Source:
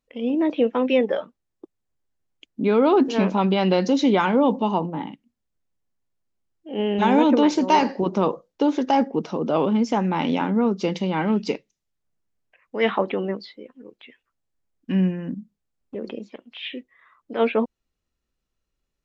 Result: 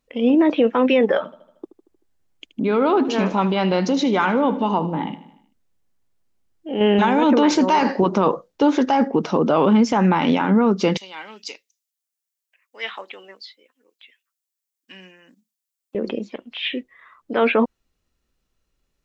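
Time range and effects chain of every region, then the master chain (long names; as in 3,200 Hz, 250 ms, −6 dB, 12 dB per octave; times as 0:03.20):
0:01.17–0:06.81: downward compressor 2 to 1, threshold −29 dBFS + repeating echo 77 ms, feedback 56%, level −15 dB
0:10.97–0:15.95: high-pass filter 230 Hz + first difference
whole clip: dynamic equaliser 1,400 Hz, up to +6 dB, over −38 dBFS, Q 1.1; boost into a limiter +14 dB; level −7 dB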